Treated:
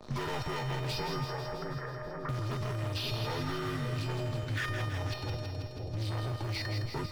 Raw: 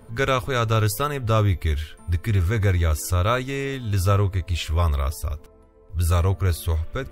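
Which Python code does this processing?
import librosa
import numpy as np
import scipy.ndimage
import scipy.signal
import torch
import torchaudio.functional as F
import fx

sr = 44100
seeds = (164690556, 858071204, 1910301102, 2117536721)

p1 = fx.partial_stretch(x, sr, pct=77)
p2 = fx.leveller(p1, sr, passes=5)
p3 = fx.level_steps(p2, sr, step_db=18)
p4 = fx.ellip_bandpass(p3, sr, low_hz=420.0, high_hz=1800.0, order=3, stop_db=40, at=(1.24, 2.29))
p5 = fx.comb_fb(p4, sr, f0_hz=610.0, decay_s=0.52, harmonics='all', damping=0.0, mix_pct=90)
p6 = p5 + fx.echo_split(p5, sr, split_hz=660.0, low_ms=535, high_ms=162, feedback_pct=52, wet_db=-6.5, dry=0)
p7 = fx.band_squash(p6, sr, depth_pct=70)
y = F.gain(torch.from_numpy(p7), 1.5).numpy()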